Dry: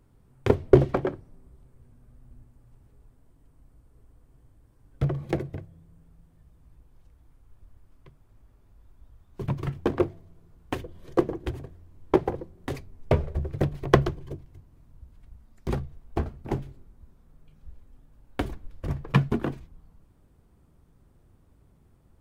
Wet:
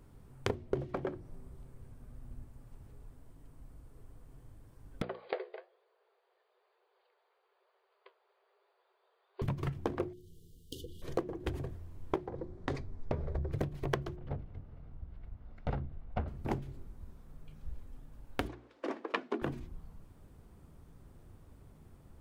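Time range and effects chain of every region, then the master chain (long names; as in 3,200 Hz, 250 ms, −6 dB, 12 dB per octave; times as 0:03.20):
0:05.02–0:09.42: flanger 1.1 Hz, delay 5 ms, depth 9.5 ms, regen +65% + linear-phase brick-wall band-pass 370–4,900 Hz
0:10.13–0:11.02: tilt shelving filter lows −6.5 dB, about 1,400 Hz + downward compressor 8 to 1, threshold −41 dBFS + linear-phase brick-wall band-stop 510–2,800 Hz
0:12.26–0:13.52: parametric band 2,800 Hz −8.5 dB 0.51 octaves + downward compressor 2 to 1, threshold −30 dBFS + low-pass filter 4,800 Hz
0:14.16–0:16.28: lower of the sound and its delayed copy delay 1.4 ms + upward compression, threshold −47 dBFS + high-frequency loss of the air 320 metres
0:18.47–0:19.42: Butterworth high-pass 260 Hz 48 dB per octave + high-frequency loss of the air 100 metres
whole clip: mains-hum notches 60/120/180/240/300/360 Hz; downward compressor 10 to 1, threshold −35 dBFS; level +4 dB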